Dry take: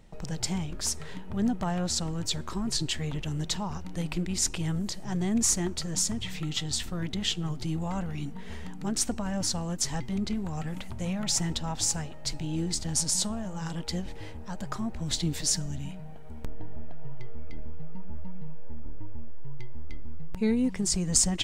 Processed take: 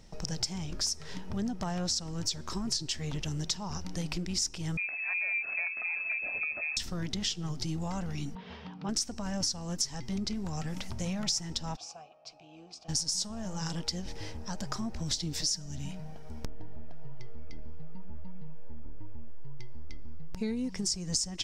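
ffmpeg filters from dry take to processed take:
ffmpeg -i in.wav -filter_complex "[0:a]asettb=1/sr,asplit=3[link_01][link_02][link_03];[link_01]atrim=end=4.774[link_04];[link_02]atrim=start=4.77:end=6.77,asetpts=PTS-STARTPTS,afade=type=in:duration=0.004:curve=qsin,afade=type=out:start_time=1.996:duration=0.004:curve=qsin,lowpass=frequency=2200:width_type=q:width=0.5098,lowpass=frequency=2200:width_type=q:width=0.6013,lowpass=frequency=2200:width_type=q:width=0.9,lowpass=frequency=2200:width_type=q:width=2.563,afreqshift=-2600[link_05];[link_03]atrim=start=6.766[link_06];[link_04][link_05]acrossfade=duration=0.004:curve1=hsin:curve2=qsin[link_07];[link_07][link_06]acrossfade=duration=0.004:curve1=qsin:curve2=hsin,asettb=1/sr,asplit=3[link_08][link_09][link_10];[link_08]atrim=end=8.354[link_11];[link_09]atrim=start=8.35:end=8.89,asetpts=PTS-STARTPTS,afade=type=in:duration=0.004:curve=qsin,afade=type=out:start_time=0.536:duration=0.004:curve=qsin,highpass=130,equalizer=frequency=220:width_type=q:width=4:gain=-5,equalizer=frequency=350:width_type=q:width=4:gain=-8,equalizer=frequency=1100:width_type=q:width=4:gain=3,equalizer=frequency=1900:width_type=q:width=4:gain=-8,lowpass=frequency=3500:width=0.5412,lowpass=frequency=3500:width=1.3066[link_12];[link_10]atrim=start=8.886[link_13];[link_11][link_12]acrossfade=duration=0.004:curve1=hsin:curve2=qsin[link_14];[link_14][link_13]acrossfade=duration=0.004:curve1=qsin:curve2=hsin,asplit=3[link_15][link_16][link_17];[link_15]afade=type=out:start_time=11.75:duration=0.02[link_18];[link_16]asplit=3[link_19][link_20][link_21];[link_19]bandpass=frequency=730:width_type=q:width=8,volume=0dB[link_22];[link_20]bandpass=frequency=1090:width_type=q:width=8,volume=-6dB[link_23];[link_21]bandpass=frequency=2440:width_type=q:width=8,volume=-9dB[link_24];[link_22][link_23][link_24]amix=inputs=3:normalize=0,afade=type=in:start_time=11.75:duration=0.02,afade=type=out:start_time=12.88:duration=0.02[link_25];[link_17]afade=type=in:start_time=12.88:duration=0.02[link_26];[link_18][link_25][link_26]amix=inputs=3:normalize=0,equalizer=frequency=5400:width=2.3:gain=14,acompressor=threshold=-30dB:ratio=5" out.wav

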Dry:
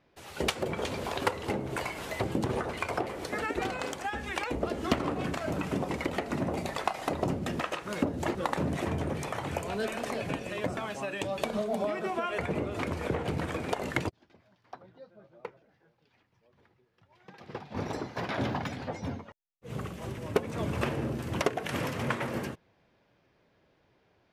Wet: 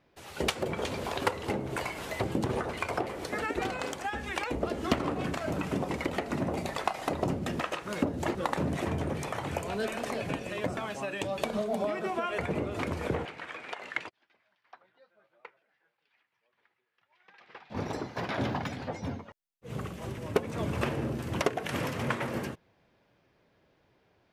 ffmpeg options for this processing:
ffmpeg -i in.wav -filter_complex "[0:a]asettb=1/sr,asplit=3[link_01][link_02][link_03];[link_01]atrim=end=13.254[link_04];[link_02]atrim=start=13.25:end=17.7,asetpts=PTS-STARTPTS,afade=type=in:duration=0.004:curve=qsin,afade=type=out:start_time=4.446:duration=0.004:curve=qsin,bandpass=frequency=2100:width_type=q:width=1[link_05];[link_03]atrim=start=17.696[link_06];[link_04][link_05]acrossfade=duration=0.004:curve1=hsin:curve2=qsin[link_07];[link_07][link_06]acrossfade=duration=0.004:curve1=qsin:curve2=hsin" out.wav

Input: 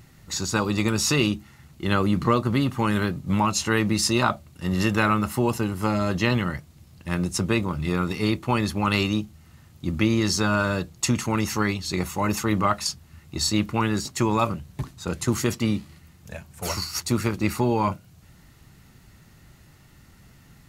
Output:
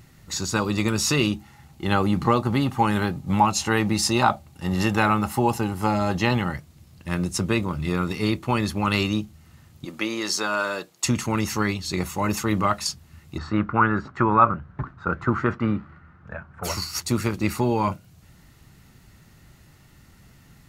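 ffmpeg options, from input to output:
ffmpeg -i in.wav -filter_complex "[0:a]asettb=1/sr,asplit=3[link_01][link_02][link_03];[link_01]atrim=end=1.324[link_04];[link_02]atrim=start=1.32:end=6.53,asetpts=PTS-STARTPTS,afade=type=in:duration=0.004:curve=qsin,afade=type=out:start_time=5.206:duration=0.004:curve=qsin,equalizer=frequency=810:width_type=o:width=0.21:gain=12.5[link_05];[link_03]atrim=start=6.526[link_06];[link_04][link_05]acrossfade=duration=0.004:curve1=hsin:curve2=qsin[link_07];[link_07][link_06]acrossfade=duration=0.004:curve1=qsin:curve2=hsin,asettb=1/sr,asplit=3[link_08][link_09][link_10];[link_08]atrim=end=9.854[link_11];[link_09]atrim=start=9.85:end=11.05,asetpts=PTS-STARTPTS,afade=type=in:duration=0.004:curve=qsin,afade=type=out:start_time=1.196:duration=0.004:curve=qsin,highpass=410[link_12];[link_10]atrim=start=11.046[link_13];[link_11][link_12]acrossfade=duration=0.004:curve1=hsin:curve2=qsin[link_14];[link_14][link_13]acrossfade=duration=0.004:curve1=qsin:curve2=hsin,asplit=3[link_15][link_16][link_17];[link_15]afade=type=out:start_time=13.37:duration=0.02[link_18];[link_16]lowpass=frequency=1400:width_type=q:width=4.7,afade=type=in:start_time=13.37:duration=0.02,afade=type=out:start_time=16.63:duration=0.02[link_19];[link_17]afade=type=in:start_time=16.63:duration=0.02[link_20];[link_18][link_19][link_20]amix=inputs=3:normalize=0" out.wav

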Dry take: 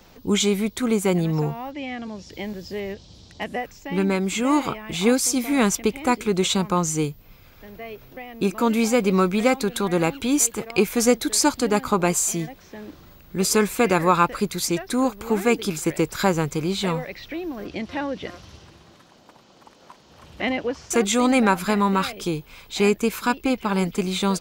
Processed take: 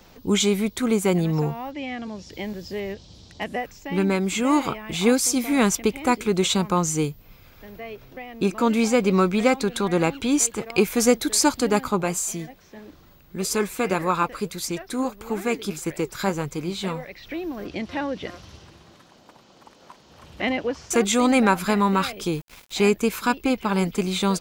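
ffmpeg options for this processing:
ffmpeg -i in.wav -filter_complex "[0:a]asettb=1/sr,asplit=3[link_01][link_02][link_03];[link_01]atrim=end=7.804[link_04];[link_02]atrim=start=7.8:end=10.66,asetpts=PTS-STARTPTS,afade=type=in:duration=0.004:curve=qsin,afade=type=out:start_time=2.856:duration=0.004:curve=qsin,equalizer=frequency=13000:width=1.4:gain=-9.5[link_05];[link_03]atrim=start=10.656[link_06];[link_04][link_05]acrossfade=duration=0.004:curve1=hsin:curve2=qsin[link_07];[link_07][link_06]acrossfade=duration=0.004:curve1=qsin:curve2=hsin,asplit=3[link_08][link_09][link_10];[link_08]afade=type=out:start_time=11.87:duration=0.02[link_11];[link_09]flanger=delay=0.4:depth=7.3:regen=72:speed=1.7:shape=triangular,afade=type=in:start_time=11.87:duration=0.02,afade=type=out:start_time=17.25:duration=0.02[link_12];[link_10]afade=type=in:start_time=17.25:duration=0.02[link_13];[link_11][link_12][link_13]amix=inputs=3:normalize=0,asettb=1/sr,asplit=3[link_14][link_15][link_16];[link_14]atrim=end=22.324[link_17];[link_15]atrim=start=22.32:end=22.77,asetpts=PTS-STARTPTS,afade=type=in:duration=0.004:curve=qsin,afade=type=out:start_time=0.446:duration=0.004:curve=qsin,aeval=exprs='val(0)*gte(abs(val(0)),0.00944)':channel_layout=same[link_18];[link_16]atrim=start=22.766[link_19];[link_17][link_18]acrossfade=duration=0.004:curve1=hsin:curve2=qsin[link_20];[link_20][link_19]acrossfade=duration=0.004:curve1=qsin:curve2=hsin" out.wav

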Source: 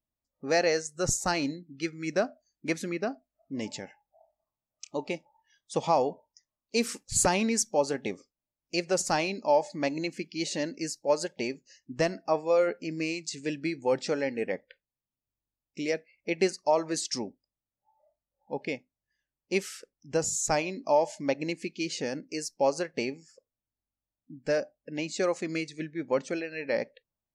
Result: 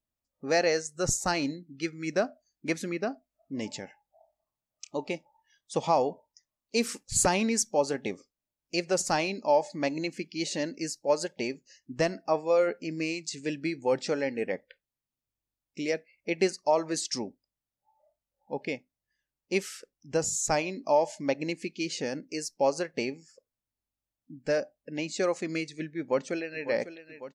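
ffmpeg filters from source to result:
ffmpeg -i in.wav -filter_complex "[0:a]asplit=2[link_01][link_02];[link_02]afade=type=in:start_time=25.99:duration=0.01,afade=type=out:start_time=26.65:duration=0.01,aecho=0:1:550|1100|1650|2200|2750|3300|3850|4400|4950:0.237137|0.165996|0.116197|0.0813381|0.0569367|0.0398557|0.027899|0.0195293|0.0136705[link_03];[link_01][link_03]amix=inputs=2:normalize=0" out.wav

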